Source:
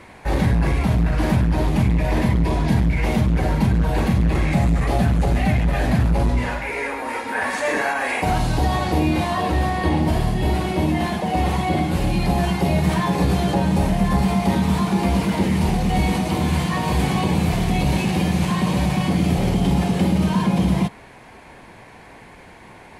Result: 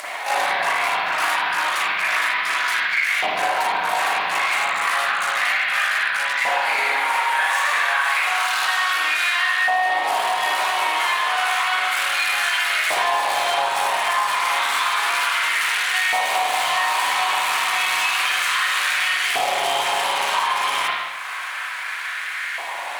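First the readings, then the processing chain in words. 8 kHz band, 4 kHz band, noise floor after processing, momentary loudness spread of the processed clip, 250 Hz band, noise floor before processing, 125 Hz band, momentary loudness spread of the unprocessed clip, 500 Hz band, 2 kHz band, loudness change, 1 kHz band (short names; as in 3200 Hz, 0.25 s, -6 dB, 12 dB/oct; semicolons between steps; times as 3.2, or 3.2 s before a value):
+7.5 dB, +10.0 dB, -29 dBFS, 2 LU, under -25 dB, -44 dBFS, under -35 dB, 2 LU, -5.0 dB, +10.5 dB, +0.5 dB, +5.5 dB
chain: bell 8100 Hz +8.5 dB 1.7 oct; pre-echo 0.115 s -21 dB; upward compressor, threshold -30 dBFS; tilt shelf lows -8 dB, about 750 Hz; spectral gate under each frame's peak -30 dB strong; half-wave rectifier; notch 870 Hz, Q 12; spring tank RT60 1 s, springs 36/43 ms, chirp 45 ms, DRR -9.5 dB; LFO high-pass saw up 0.31 Hz 720–1600 Hz; compressor 6:1, threshold -17 dBFS, peak gain reduction 10.5 dB; bit-crush 9-bit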